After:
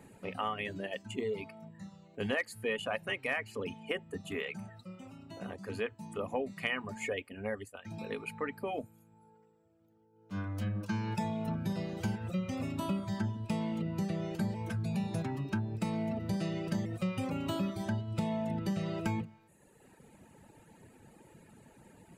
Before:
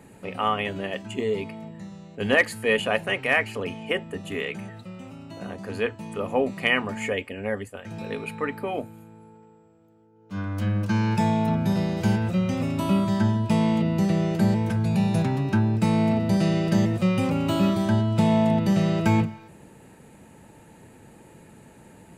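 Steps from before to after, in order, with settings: reverb removal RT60 1.1 s; compression 3:1, threshold -26 dBFS, peak gain reduction 9 dB; trim -5.5 dB

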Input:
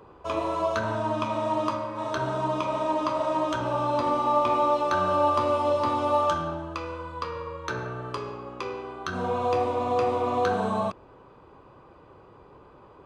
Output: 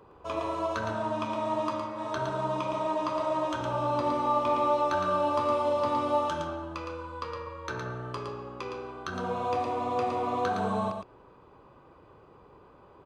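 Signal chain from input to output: delay 113 ms -5 dB; trim -4.5 dB

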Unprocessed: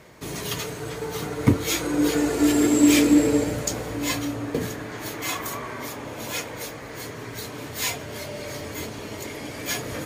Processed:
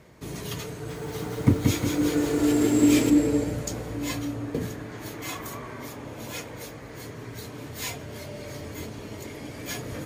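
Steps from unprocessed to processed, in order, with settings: bass shelf 350 Hz +7.5 dB; 0.71–3.10 s: bit-crushed delay 179 ms, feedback 55%, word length 7-bit, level -3.5 dB; trim -7 dB

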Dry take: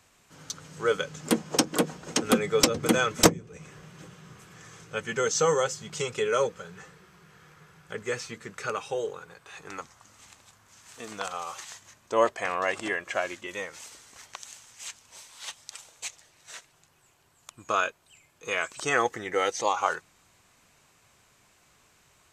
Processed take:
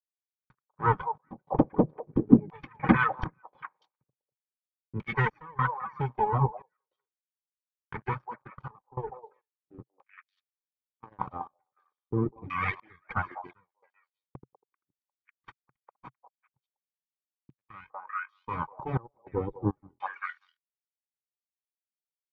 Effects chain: comb filter that takes the minimum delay 0.88 ms; distance through air 240 m; crossover distortion -44 dBFS; peaking EQ 130 Hz +10 dB 0.5 oct; expander -51 dBFS; on a send: repeats whose band climbs or falls 195 ms, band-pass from 700 Hz, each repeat 1.4 oct, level -3 dB; on the sum: reverb removal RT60 1.3 s; LFO low-pass saw down 0.4 Hz 300–2500 Hz; comb of notches 680 Hz; trance gate "xxx..xxx..xxxx" 102 bpm -24 dB; trim +4 dB

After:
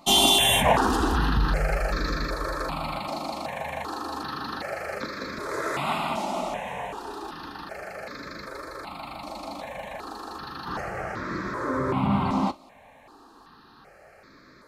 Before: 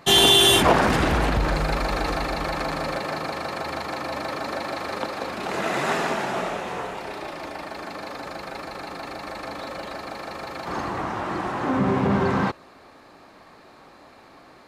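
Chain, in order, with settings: 1.78–2.85 s: band-stop 2.1 kHz, Q 10; gated-style reverb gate 80 ms falling, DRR 11.5 dB; stepped phaser 2.6 Hz 450–2900 Hz

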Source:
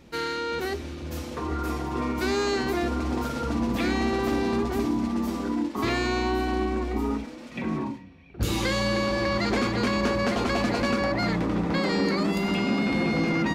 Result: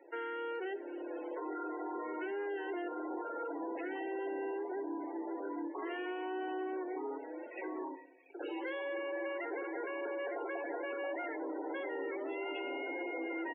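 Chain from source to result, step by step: steep high-pass 310 Hz 72 dB/octave; compression 3:1, threshold -37 dBFS, peak gain reduction 11 dB; Savitzky-Golay filter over 25 samples; waveshaping leveller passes 2; comb of notches 1.2 kHz; loudest bins only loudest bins 32; feedback delay 64 ms, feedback 44%, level -24 dB; trim -6.5 dB

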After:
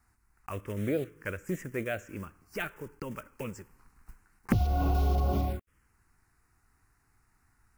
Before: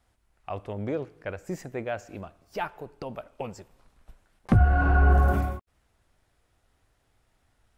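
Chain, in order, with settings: block-companded coder 5-bit; touch-sensitive phaser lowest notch 570 Hz, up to 1.6 kHz, full sweep at -20 dBFS; compression 6:1, threshold -24 dBFS, peak gain reduction 9.5 dB; bass shelf 180 Hz -4 dB; trim +3.5 dB

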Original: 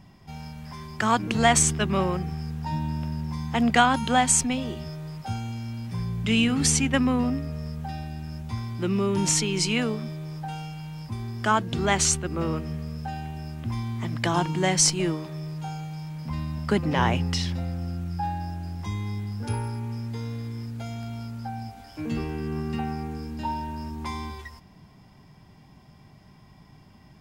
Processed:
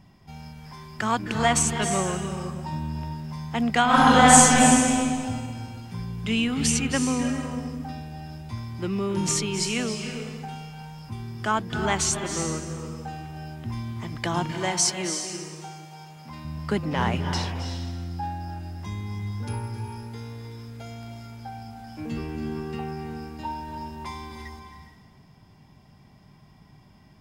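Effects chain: 3.85–4.60 s: reverb throw, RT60 1.6 s, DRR -11 dB; 14.51–16.45 s: high-pass 310 Hz 6 dB/octave; reverberation RT60 1.4 s, pre-delay 252 ms, DRR 6 dB; trim -2.5 dB

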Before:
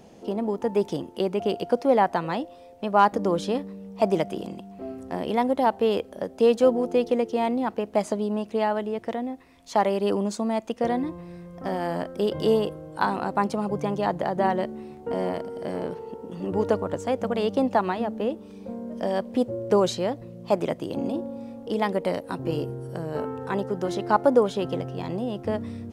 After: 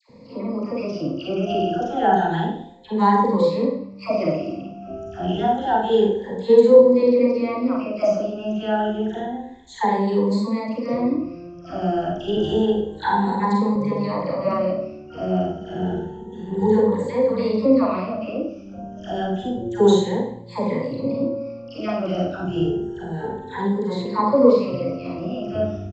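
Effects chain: drifting ripple filter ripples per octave 0.97, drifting +0.29 Hz, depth 19 dB; bass shelf 270 Hz +8 dB; phase dispersion lows, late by 95 ms, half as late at 1.1 kHz; resampled via 16 kHz; Schroeder reverb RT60 0.55 s, combs from 33 ms, DRR -2 dB; 12.37–13.76 s: three bands compressed up and down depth 40%; trim -6.5 dB

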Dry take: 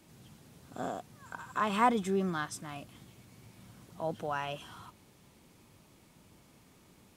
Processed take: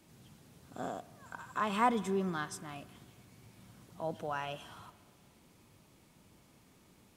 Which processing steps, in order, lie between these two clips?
spring tank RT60 2 s, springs 59 ms, chirp 80 ms, DRR 17.5 dB; trim -2.5 dB

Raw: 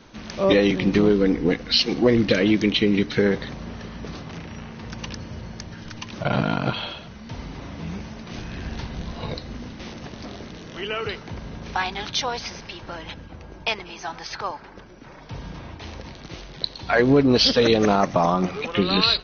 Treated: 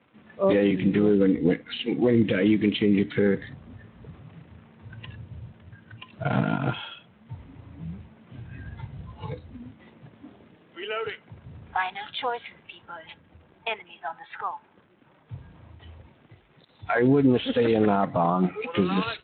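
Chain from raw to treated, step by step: spectral noise reduction 14 dB; 10.55–11.45 s: high-pass 180 Hz 6 dB/octave; 16.08–16.69 s: compression 3:1, threshold -46 dBFS, peak gain reduction 19.5 dB; peak limiter -12 dBFS, peak gain reduction 7 dB; crackle 420 per s -43 dBFS; distance through air 260 m; Speex 18 kbps 8 kHz

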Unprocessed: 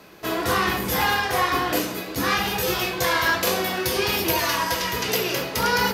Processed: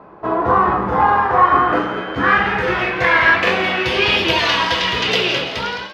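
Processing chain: fade out at the end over 0.65 s; 1.44–2.45 s: whistle 3.1 kHz -31 dBFS; low-pass sweep 1 kHz -> 3.3 kHz, 0.91–4.40 s; on a send: frequency-shifting echo 170 ms, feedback 44%, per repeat +120 Hz, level -12 dB; on the sum: trim +4.5 dB

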